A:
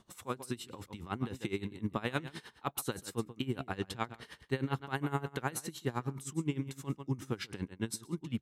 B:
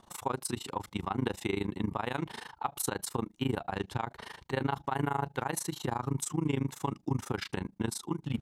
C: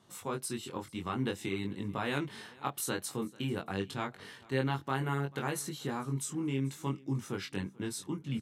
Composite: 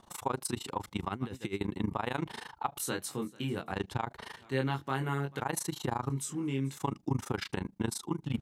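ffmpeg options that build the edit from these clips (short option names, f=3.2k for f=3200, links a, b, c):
-filter_complex "[2:a]asplit=3[a][b][c];[1:a]asplit=5[d][e][f][g][h];[d]atrim=end=1.092[i];[0:a]atrim=start=1.088:end=1.612[j];[e]atrim=start=1.608:end=2.802[k];[a]atrim=start=2.798:end=3.722[l];[f]atrim=start=3.718:end=4.372[m];[b]atrim=start=4.368:end=5.402[n];[g]atrim=start=5.398:end=6.102[o];[c]atrim=start=6.098:end=6.772[p];[h]atrim=start=6.768[q];[i][j]acrossfade=d=0.004:c1=hsin:c2=hsin[r];[r][k]acrossfade=d=0.004:c1=hsin:c2=hsin[s];[s][l]acrossfade=d=0.004:c1=hsin:c2=hsin[t];[t][m]acrossfade=d=0.004:c1=hsin:c2=hsin[u];[u][n]acrossfade=d=0.004:c1=hsin:c2=hsin[v];[v][o]acrossfade=d=0.004:c1=hsin:c2=hsin[w];[w][p]acrossfade=d=0.004:c1=hsin:c2=hsin[x];[x][q]acrossfade=d=0.004:c1=hsin:c2=hsin"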